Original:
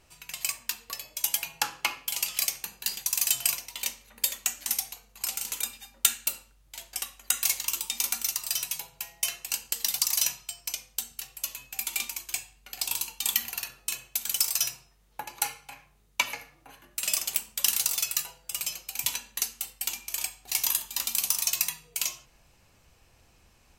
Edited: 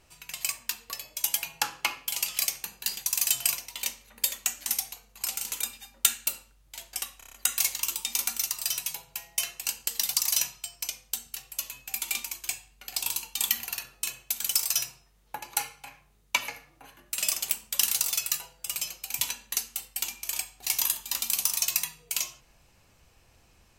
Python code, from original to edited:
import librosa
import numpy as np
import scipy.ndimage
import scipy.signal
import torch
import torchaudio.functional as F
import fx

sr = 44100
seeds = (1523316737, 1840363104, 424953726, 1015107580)

y = fx.edit(x, sr, fx.stutter(start_s=7.18, slice_s=0.03, count=6), tone=tone)